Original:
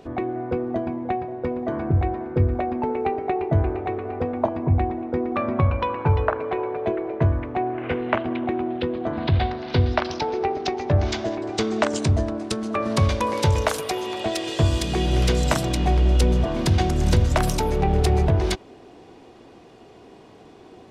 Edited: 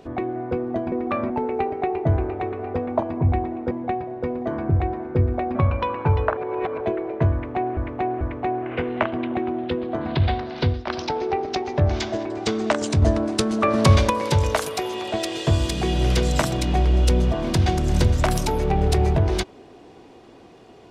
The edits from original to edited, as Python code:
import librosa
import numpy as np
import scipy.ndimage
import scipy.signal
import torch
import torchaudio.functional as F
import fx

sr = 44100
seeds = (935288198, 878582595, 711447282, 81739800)

y = fx.edit(x, sr, fx.swap(start_s=0.92, length_s=1.84, other_s=5.17, other_length_s=0.38),
    fx.reverse_span(start_s=6.37, length_s=0.44),
    fx.repeat(start_s=7.33, length_s=0.44, count=3),
    fx.fade_out_to(start_s=9.74, length_s=0.25, floor_db=-17.0),
    fx.clip_gain(start_s=12.14, length_s=1.08, db=5.0), tone=tone)